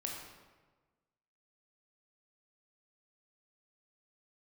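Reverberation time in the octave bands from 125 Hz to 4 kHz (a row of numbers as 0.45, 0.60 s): 1.5, 1.4, 1.4, 1.3, 1.1, 0.85 s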